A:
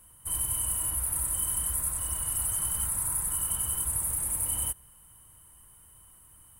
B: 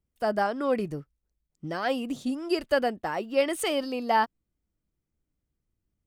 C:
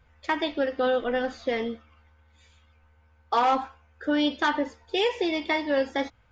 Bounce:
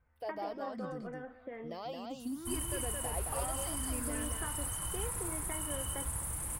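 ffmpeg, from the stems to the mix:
ffmpeg -i stem1.wav -i stem2.wav -i stem3.wav -filter_complex "[0:a]acrossover=split=7600[link_01][link_02];[link_02]acompressor=threshold=-44dB:ratio=4:attack=1:release=60[link_03];[link_01][link_03]amix=inputs=2:normalize=0,adelay=2200,volume=-1dB[link_04];[1:a]alimiter=limit=-21.5dB:level=0:latency=1,asplit=2[link_05][link_06];[link_06]afreqshift=0.7[link_07];[link_05][link_07]amix=inputs=2:normalize=1,volume=-9dB,asplit=2[link_08][link_09];[link_09]volume=-3.5dB[link_10];[2:a]lowpass=frequency=2100:width=0.5412,lowpass=frequency=2100:width=1.3066,acompressor=threshold=-28dB:ratio=6,volume=-12.5dB,asplit=2[link_11][link_12];[link_12]volume=-15.5dB[link_13];[link_10][link_13]amix=inputs=2:normalize=0,aecho=0:1:219:1[link_14];[link_04][link_08][link_11][link_14]amix=inputs=4:normalize=0" out.wav

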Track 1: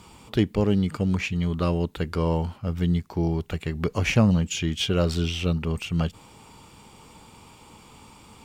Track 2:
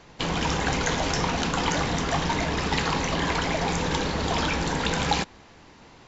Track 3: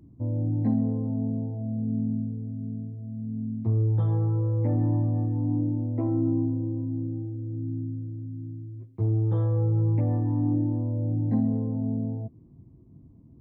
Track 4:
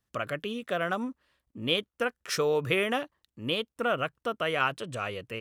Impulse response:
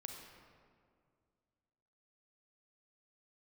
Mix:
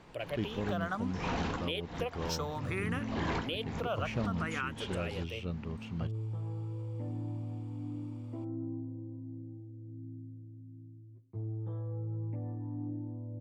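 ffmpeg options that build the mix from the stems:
-filter_complex "[0:a]highshelf=frequency=4600:gain=-11.5,volume=-13.5dB[link_01];[1:a]alimiter=limit=-17.5dB:level=0:latency=1:release=11,lowpass=frequency=2300:poles=1,volume=-5.5dB[link_02];[2:a]adelay=2350,volume=-14dB[link_03];[3:a]asplit=2[link_04][link_05];[link_05]afreqshift=0.6[link_06];[link_04][link_06]amix=inputs=2:normalize=1,volume=-3.5dB,asplit=2[link_07][link_08];[link_08]apad=whole_len=267694[link_09];[link_02][link_09]sidechaincompress=threshold=-53dB:ratio=8:attack=16:release=164[link_10];[link_01][link_10][link_03][link_07]amix=inputs=4:normalize=0,alimiter=limit=-23.5dB:level=0:latency=1:release=134"

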